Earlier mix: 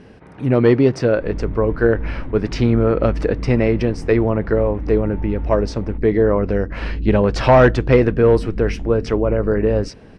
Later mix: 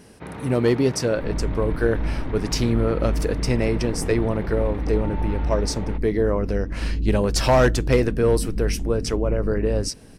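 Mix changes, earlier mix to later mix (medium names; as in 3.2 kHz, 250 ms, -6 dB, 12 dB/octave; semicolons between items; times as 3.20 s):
speech -6.0 dB; first sound +7.5 dB; master: remove low-pass 2.6 kHz 12 dB/octave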